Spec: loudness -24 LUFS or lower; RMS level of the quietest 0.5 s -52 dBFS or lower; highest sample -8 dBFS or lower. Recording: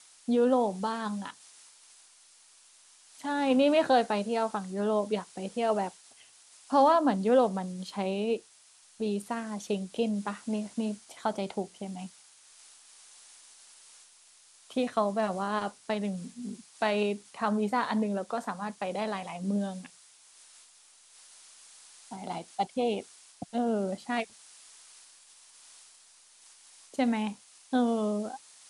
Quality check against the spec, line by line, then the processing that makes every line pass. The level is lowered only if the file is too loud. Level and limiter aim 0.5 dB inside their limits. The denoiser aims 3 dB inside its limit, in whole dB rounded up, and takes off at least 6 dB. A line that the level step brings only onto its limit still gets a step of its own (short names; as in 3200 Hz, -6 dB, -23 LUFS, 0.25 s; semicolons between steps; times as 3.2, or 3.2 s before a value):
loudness -30.5 LUFS: OK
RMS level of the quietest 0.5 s -59 dBFS: OK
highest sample -12.0 dBFS: OK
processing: none